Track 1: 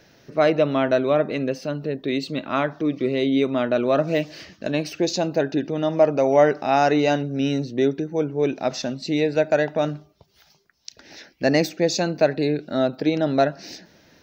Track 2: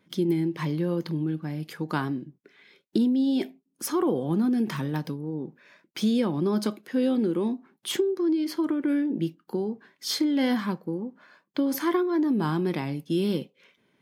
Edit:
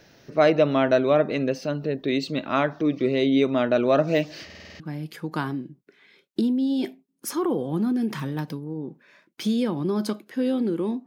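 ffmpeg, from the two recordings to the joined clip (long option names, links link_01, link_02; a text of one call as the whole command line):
ffmpeg -i cue0.wav -i cue1.wav -filter_complex "[0:a]apad=whole_dur=11.06,atrim=end=11.06,asplit=7[link_01][link_02][link_03][link_04][link_05][link_06][link_07];[link_01]atrim=end=4.502[link_08];[link_02]atrim=start=4.448:end=4.502[link_09];[link_03]atrim=start=4.448:end=4.502[link_10];[link_04]atrim=start=4.448:end=4.502[link_11];[link_05]atrim=start=4.448:end=4.502[link_12];[link_06]atrim=start=4.448:end=4.502[link_13];[link_07]atrim=start=4.448:end=4.502[link_14];[1:a]atrim=start=1.368:end=7.63[link_15];[link_08][link_09]acrossfade=duration=0.004:curve1=hsin:curve2=hsin[link_16];[link_16][link_10]acrossfade=duration=0.004:curve1=hsin:curve2=hsin[link_17];[link_17][link_11]acrossfade=duration=0.004:curve1=hsin:curve2=hsin[link_18];[link_18][link_12]acrossfade=duration=0.004:curve1=hsin:curve2=hsin[link_19];[link_19][link_13]acrossfade=duration=0.004:curve1=hsin:curve2=hsin[link_20];[link_20][link_14]acrossfade=duration=0.004:curve1=hsin:curve2=hsin[link_21];[link_21][link_15]acrossfade=duration=0.004:curve1=hsin:curve2=hsin" out.wav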